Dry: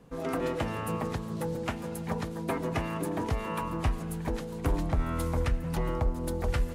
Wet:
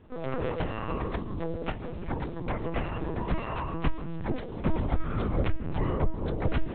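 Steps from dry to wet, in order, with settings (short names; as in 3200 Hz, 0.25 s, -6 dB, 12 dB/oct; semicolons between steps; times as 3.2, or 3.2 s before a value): low shelf 100 Hz +4 dB; on a send: darkening echo 0.345 s, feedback 62%, low-pass 950 Hz, level -19 dB; on the sum: LPC vocoder at 8 kHz pitch kept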